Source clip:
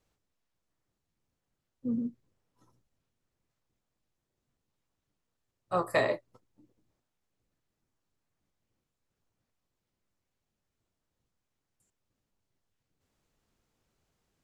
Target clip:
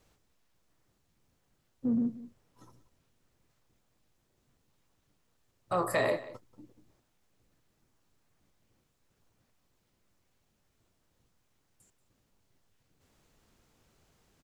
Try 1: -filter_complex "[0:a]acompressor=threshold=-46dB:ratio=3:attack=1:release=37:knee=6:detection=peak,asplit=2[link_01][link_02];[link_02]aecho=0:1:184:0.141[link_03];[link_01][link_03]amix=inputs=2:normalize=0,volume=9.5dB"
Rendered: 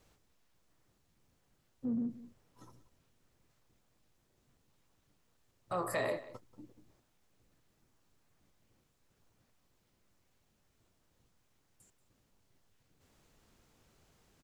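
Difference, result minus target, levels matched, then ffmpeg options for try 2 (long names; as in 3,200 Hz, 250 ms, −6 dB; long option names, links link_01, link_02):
downward compressor: peak gain reduction +6 dB
-filter_complex "[0:a]acompressor=threshold=-37dB:ratio=3:attack=1:release=37:knee=6:detection=peak,asplit=2[link_01][link_02];[link_02]aecho=0:1:184:0.141[link_03];[link_01][link_03]amix=inputs=2:normalize=0,volume=9.5dB"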